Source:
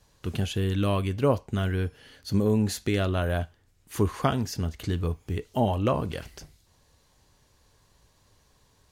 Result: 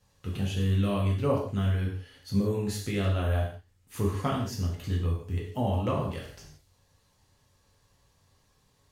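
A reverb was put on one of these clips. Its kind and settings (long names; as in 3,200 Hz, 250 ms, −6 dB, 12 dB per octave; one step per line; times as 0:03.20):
reverb whose tail is shaped and stops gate 200 ms falling, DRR −3.5 dB
level −8.5 dB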